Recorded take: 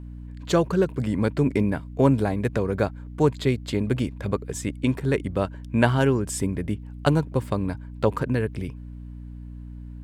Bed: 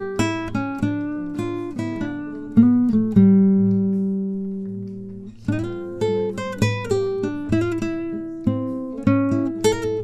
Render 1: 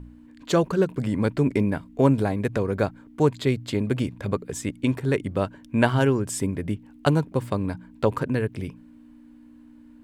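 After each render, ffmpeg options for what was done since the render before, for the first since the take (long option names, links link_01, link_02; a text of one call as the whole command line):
ffmpeg -i in.wav -af "bandreject=frequency=60:width_type=h:width=4,bandreject=frequency=120:width_type=h:width=4,bandreject=frequency=180:width_type=h:width=4" out.wav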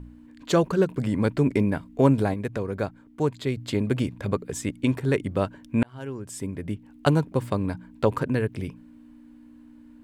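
ffmpeg -i in.wav -filter_complex "[0:a]asplit=4[link_01][link_02][link_03][link_04];[link_01]atrim=end=2.342[link_05];[link_02]atrim=start=2.338:end=3.572,asetpts=PTS-STARTPTS,volume=-4.5dB[link_06];[link_03]atrim=start=3.568:end=5.83,asetpts=PTS-STARTPTS,afade=type=out:start_time=2.258:duration=0.004:curve=hsin[link_07];[link_04]atrim=start=5.83,asetpts=PTS-STARTPTS,afade=type=in:duration=1.25[link_08];[link_05][link_06]acrossfade=duration=0.004:curve1=hsin:curve2=hsin[link_09];[link_07][link_08]concat=n=2:v=0:a=1[link_10];[link_09][link_10]acrossfade=duration=0.004:curve1=hsin:curve2=hsin" out.wav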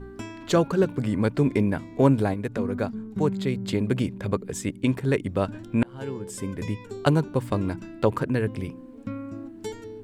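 ffmpeg -i in.wav -i bed.wav -filter_complex "[1:a]volume=-16.5dB[link_01];[0:a][link_01]amix=inputs=2:normalize=0" out.wav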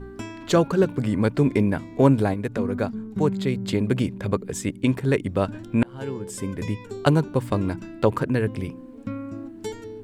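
ffmpeg -i in.wav -af "volume=2dB" out.wav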